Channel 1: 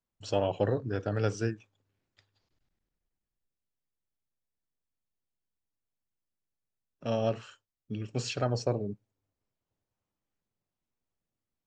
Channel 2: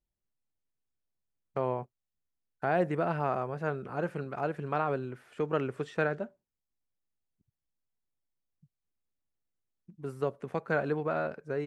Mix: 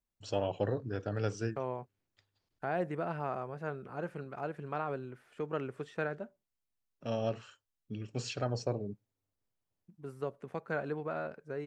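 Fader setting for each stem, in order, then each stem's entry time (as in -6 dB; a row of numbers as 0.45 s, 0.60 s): -4.5 dB, -6.0 dB; 0.00 s, 0.00 s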